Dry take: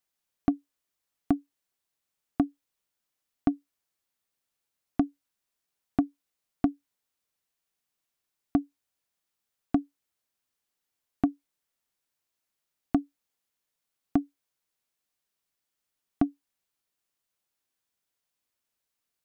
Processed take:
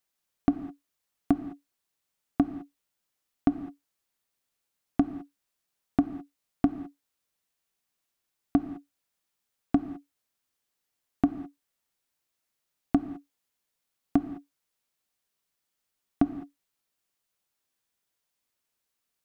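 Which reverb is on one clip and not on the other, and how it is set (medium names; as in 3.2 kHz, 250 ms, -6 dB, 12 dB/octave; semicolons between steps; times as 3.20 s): gated-style reverb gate 230 ms flat, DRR 10 dB; trim +1.5 dB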